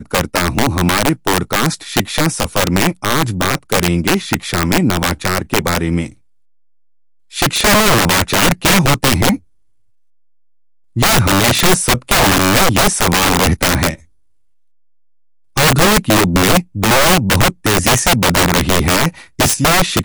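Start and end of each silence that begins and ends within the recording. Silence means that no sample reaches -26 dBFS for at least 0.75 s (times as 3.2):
6.08–7.34
9.36–10.96
13.95–15.56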